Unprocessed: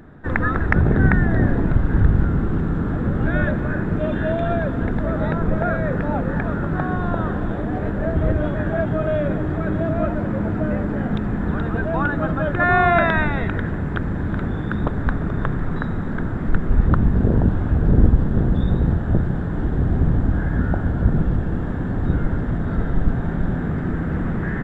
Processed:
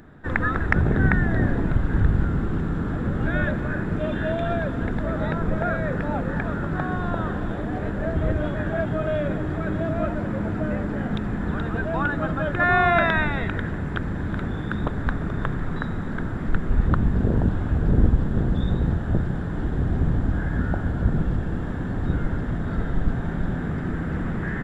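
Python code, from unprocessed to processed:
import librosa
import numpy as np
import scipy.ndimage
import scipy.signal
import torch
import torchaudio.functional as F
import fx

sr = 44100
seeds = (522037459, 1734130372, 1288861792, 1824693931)

y = fx.high_shelf(x, sr, hz=2400.0, db=8.0)
y = y * librosa.db_to_amplitude(-4.0)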